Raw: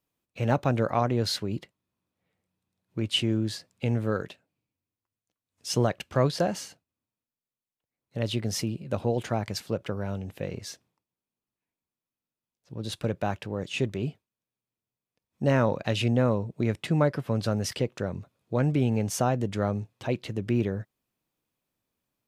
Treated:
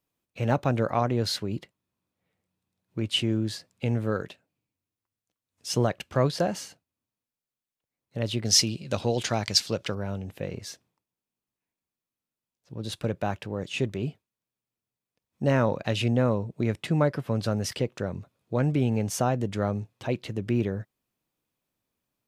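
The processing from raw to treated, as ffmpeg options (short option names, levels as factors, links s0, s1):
-filter_complex "[0:a]asettb=1/sr,asplit=3[s0][s1][s2];[s0]atrim=end=8.454[s3];[s1]atrim=start=8.45:end=9.95,asetpts=PTS-STARTPTS,afade=t=in:d=0.004:c=qsin,afade=t=out:st=1.496:d=0.004:c=qsin,equalizer=f=5000:t=o:w=2.1:g=14.5[s4];[s2]atrim=start=9.946[s5];[s3][s4]acrossfade=d=0.004:c1=hsin:c2=qsin[s6];[s6][s5]acrossfade=d=0.004:c1=qsin:c2=hsin"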